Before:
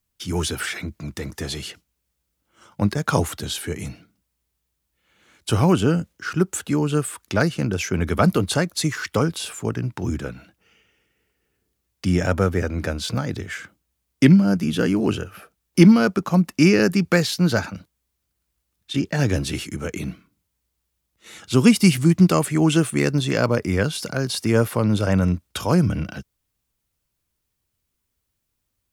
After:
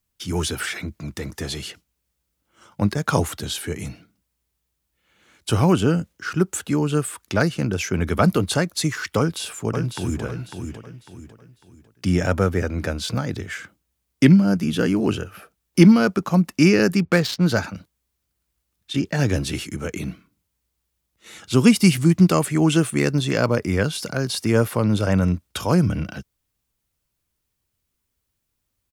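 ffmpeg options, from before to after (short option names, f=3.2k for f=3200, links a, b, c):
-filter_complex "[0:a]asplit=2[a][b];[b]afade=t=in:st=9.18:d=0.01,afade=t=out:st=10.22:d=0.01,aecho=0:1:550|1100|1650|2200:0.473151|0.165603|0.057961|0.0202864[c];[a][c]amix=inputs=2:normalize=0,asettb=1/sr,asplit=3[d][e][f];[d]atrim=end=16.994[g];[e]atrim=start=16.99:end=17.46,asetpts=PTS-STARTPTS,afade=t=in:d=0.004:c=qsin,afade=t=out:st=0.466:d=0.004:c=qsin,adynamicsmooth=sensitivity=4:basefreq=1.8k[h];[f]atrim=start=17.456[i];[g][h]acrossfade=d=0.004:c1=hsin:c2=qsin[j];[j][i]acrossfade=d=0.004:c1=qsin:c2=hsin"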